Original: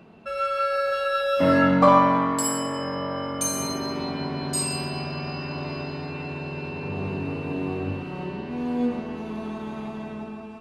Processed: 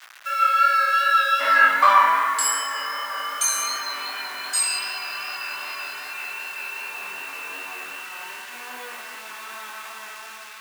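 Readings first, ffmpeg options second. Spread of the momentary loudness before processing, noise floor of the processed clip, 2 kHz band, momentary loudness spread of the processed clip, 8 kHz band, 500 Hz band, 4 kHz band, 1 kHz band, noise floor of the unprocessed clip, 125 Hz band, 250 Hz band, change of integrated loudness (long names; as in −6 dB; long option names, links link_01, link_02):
15 LU, −40 dBFS, +10.0 dB, 20 LU, +5.5 dB, −12.0 dB, +6.0 dB, +5.0 dB, −37 dBFS, below −30 dB, −25.5 dB, +4.0 dB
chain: -af "flanger=delay=22.5:depth=3.9:speed=2.6,acrusher=bits=7:mix=0:aa=0.000001,highpass=frequency=1500:width_type=q:width=1.8,volume=8dB"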